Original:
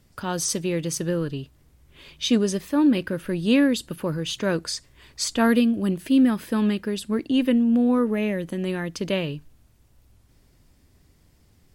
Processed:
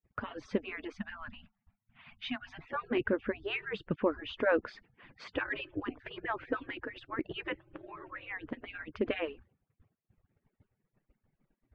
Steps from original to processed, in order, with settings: median-filter separation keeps percussive; LPF 2300 Hz 24 dB/oct; expander -56 dBFS; 0.93–2.59 elliptic band-stop 230–700 Hz, stop band 40 dB

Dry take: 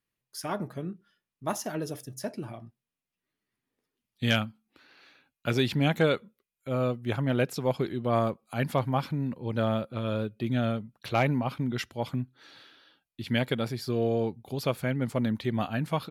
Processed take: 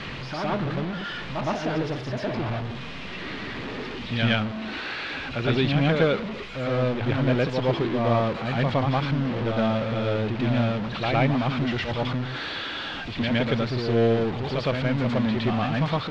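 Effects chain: zero-crossing step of -26 dBFS; short-mantissa float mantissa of 2-bit; LPF 3900 Hz 24 dB/oct; reverse echo 0.113 s -4 dB

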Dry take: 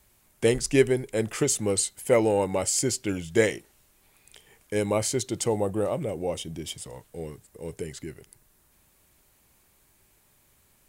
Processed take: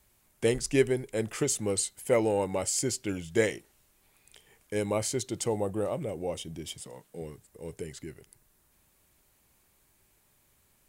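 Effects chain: 6.8–7.22 resonant low shelf 120 Hz -11 dB, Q 1.5; gain -4 dB

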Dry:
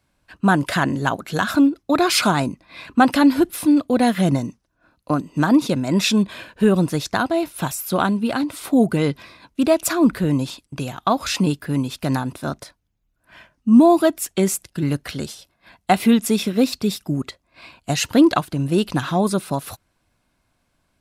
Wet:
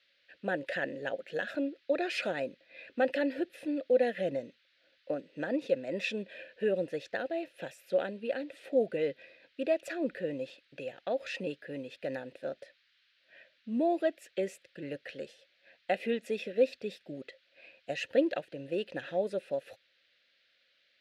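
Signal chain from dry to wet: vowel filter e; band noise 1500–4300 Hz -71 dBFS

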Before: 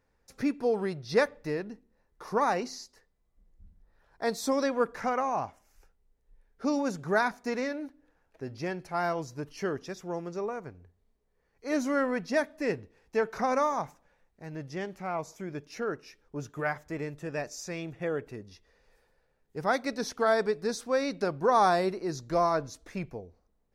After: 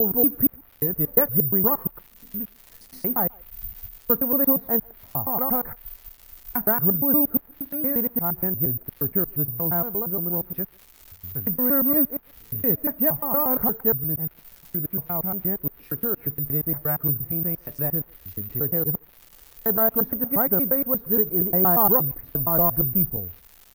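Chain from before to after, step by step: slices in reverse order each 0.117 s, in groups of 7; tone controls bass +14 dB, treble -13 dB; crackle 440/s -40 dBFS; treble ducked by the level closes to 1300 Hz, closed at -28 dBFS; speakerphone echo 0.14 s, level -25 dB; careless resampling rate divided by 3×, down none, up zero stuff

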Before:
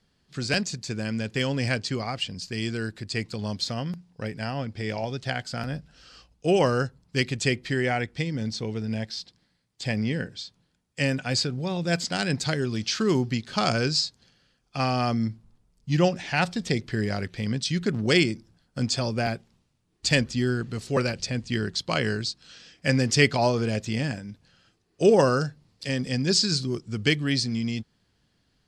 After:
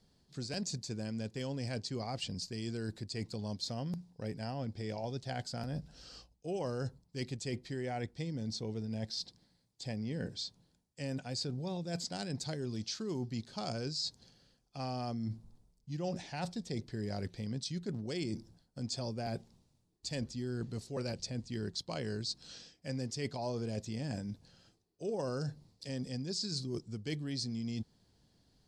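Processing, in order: band shelf 1900 Hz -8 dB; reverse; compressor 6:1, threshold -36 dBFS, peak gain reduction 20.5 dB; reverse

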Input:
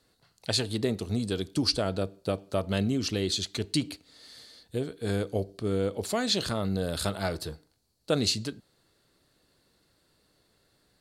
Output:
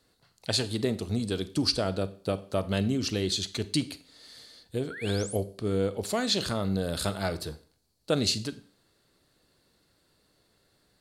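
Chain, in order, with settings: painted sound rise, 4.9–5.37, 1300–12000 Hz -41 dBFS; Schroeder reverb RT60 0.45 s, combs from 31 ms, DRR 15 dB

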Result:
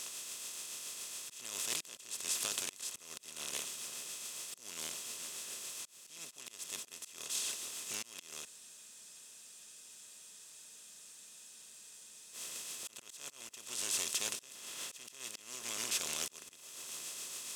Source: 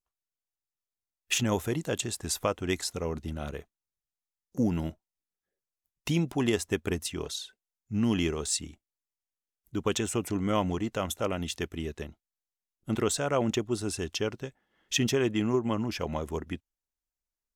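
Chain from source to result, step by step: per-bin compression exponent 0.2; pre-emphasis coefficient 0.97; on a send: split-band echo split 2700 Hz, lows 0.471 s, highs 0.192 s, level -13.5 dB; on the sum: tremolo triangle 7.1 Hz, depth 35%; auto swell 0.456 s; spectral freeze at 8.47, 3.86 s; Doppler distortion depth 0.18 ms; gain -5 dB

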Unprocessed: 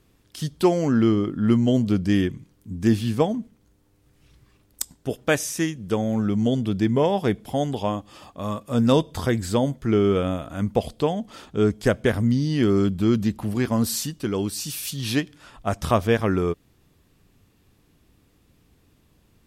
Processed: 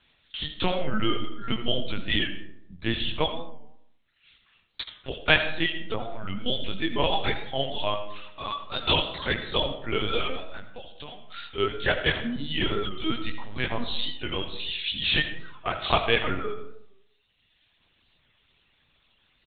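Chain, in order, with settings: 8.44–9.07 HPF 570 Hz 12 dB/oct; early reflections 21 ms -3.5 dB, 79 ms -5.5 dB; reverb removal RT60 1.6 s; 10.43–11.28 compressor 4:1, threshold -35 dBFS, peak gain reduction 16.5 dB; tilt +4 dB/oct; 5.73–6.42 treble ducked by the level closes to 1300 Hz, closed at -23 dBFS; high shelf 2200 Hz +9 dB; LPC vocoder at 8 kHz pitch kept; reverb RT60 0.80 s, pre-delay 40 ms, DRR 9.5 dB; record warp 45 rpm, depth 100 cents; gain -3.5 dB

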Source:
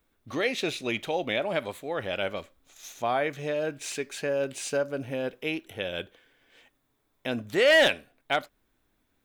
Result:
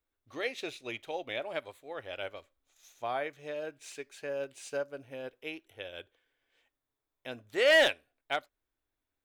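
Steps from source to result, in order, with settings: bell 190 Hz -13 dB 0.66 oct; upward expander 1.5:1, over -41 dBFS; gain -2.5 dB

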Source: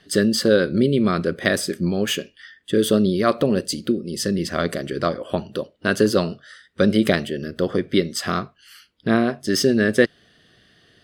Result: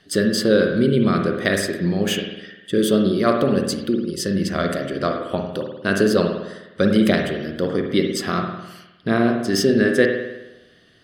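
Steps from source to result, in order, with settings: spring tank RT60 1 s, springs 51 ms, chirp 60 ms, DRR 3 dB; gain -1 dB

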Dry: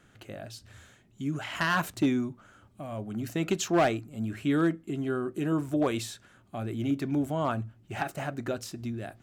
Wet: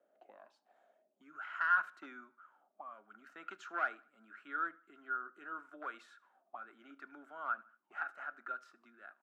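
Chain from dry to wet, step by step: auto-wah 580–1400 Hz, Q 12, up, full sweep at -33.5 dBFS; steep high-pass 200 Hz 36 dB/oct; feedback echo 76 ms, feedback 39%, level -22.5 dB; gain +5.5 dB

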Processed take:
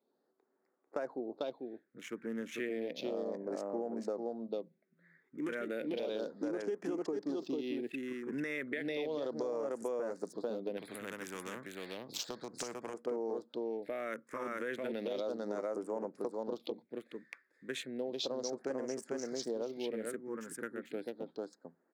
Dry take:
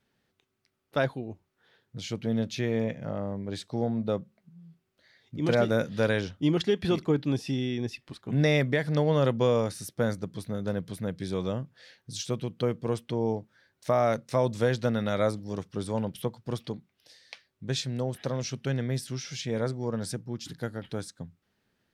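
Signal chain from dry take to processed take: Wiener smoothing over 15 samples; HPF 300 Hz 24 dB/oct; echo 0.445 s -4 dB; limiter -23 dBFS, peak gain reduction 10.5 dB; phaser stages 4, 0.33 Hz, lowest notch 680–3700 Hz; compressor 5:1, threshold -36 dBFS, peak gain reduction 9 dB; 10.77–12.94 spectral compressor 2:1; gain +2 dB

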